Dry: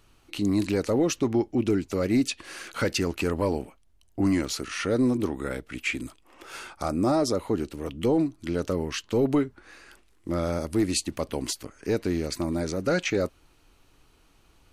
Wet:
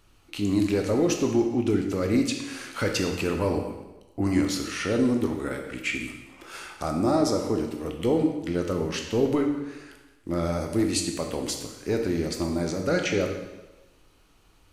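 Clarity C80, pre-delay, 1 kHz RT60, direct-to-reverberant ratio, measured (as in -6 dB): 7.5 dB, 7 ms, 1.1 s, 3.0 dB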